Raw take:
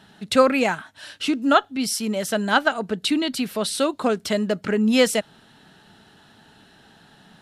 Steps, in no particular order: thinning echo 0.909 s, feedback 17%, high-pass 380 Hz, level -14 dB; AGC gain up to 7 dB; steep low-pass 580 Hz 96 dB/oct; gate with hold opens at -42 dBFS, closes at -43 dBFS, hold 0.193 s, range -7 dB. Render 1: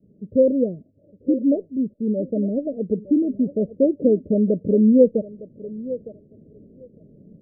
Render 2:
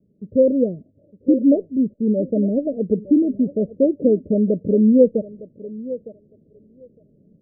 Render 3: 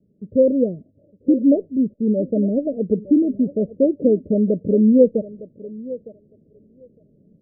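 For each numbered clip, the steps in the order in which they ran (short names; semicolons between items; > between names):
gate with hold > thinning echo > AGC > steep low-pass; steep low-pass > gate with hold > thinning echo > AGC; steep low-pass > gate with hold > AGC > thinning echo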